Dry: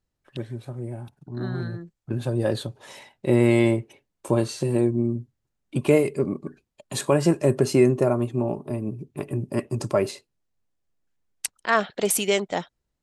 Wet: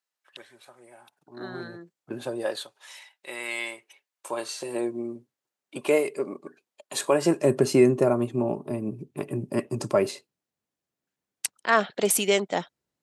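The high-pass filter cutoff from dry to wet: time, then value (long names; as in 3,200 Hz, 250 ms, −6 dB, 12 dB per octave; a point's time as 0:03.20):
0:01.00 990 Hz
0:01.54 340 Hz
0:02.27 340 Hz
0:02.80 1,400 Hz
0:03.80 1,400 Hz
0:04.90 450 Hz
0:06.99 450 Hz
0:07.57 150 Hz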